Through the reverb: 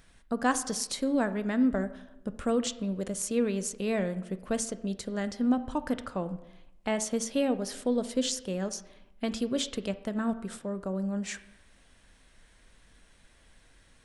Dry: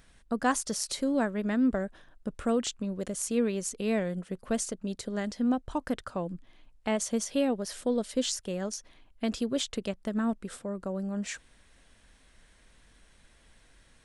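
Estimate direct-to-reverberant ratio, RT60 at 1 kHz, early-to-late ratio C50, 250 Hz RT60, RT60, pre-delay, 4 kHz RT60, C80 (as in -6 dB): 11.5 dB, 0.85 s, 14.5 dB, 1.1 s, 0.90 s, 9 ms, 0.65 s, 16.5 dB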